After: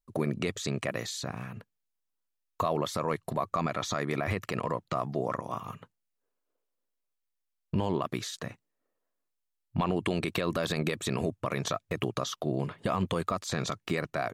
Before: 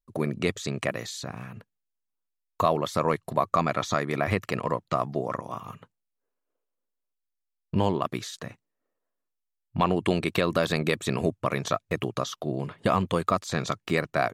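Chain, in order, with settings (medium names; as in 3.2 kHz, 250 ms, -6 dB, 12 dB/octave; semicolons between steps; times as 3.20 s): peak limiter -17.5 dBFS, peak gain reduction 8 dB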